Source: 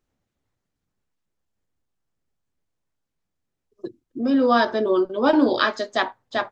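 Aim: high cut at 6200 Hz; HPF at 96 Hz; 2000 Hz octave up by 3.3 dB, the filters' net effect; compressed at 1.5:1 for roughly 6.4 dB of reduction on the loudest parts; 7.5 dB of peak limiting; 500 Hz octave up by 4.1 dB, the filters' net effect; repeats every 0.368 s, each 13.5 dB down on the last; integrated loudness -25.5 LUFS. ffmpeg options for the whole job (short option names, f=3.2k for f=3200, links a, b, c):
-af "highpass=96,lowpass=6.2k,equalizer=f=500:t=o:g=5,equalizer=f=2k:t=o:g=4,acompressor=threshold=-28dB:ratio=1.5,alimiter=limit=-16dB:level=0:latency=1,aecho=1:1:368|736:0.211|0.0444"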